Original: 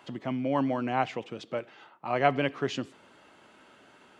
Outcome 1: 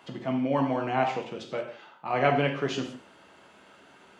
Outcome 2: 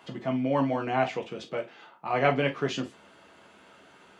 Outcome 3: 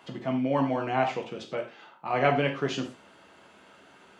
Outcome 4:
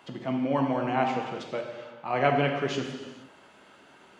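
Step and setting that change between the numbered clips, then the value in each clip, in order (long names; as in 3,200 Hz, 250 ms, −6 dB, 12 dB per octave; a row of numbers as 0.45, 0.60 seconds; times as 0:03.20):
reverb whose tail is shaped and stops, gate: 210, 80, 140, 500 milliseconds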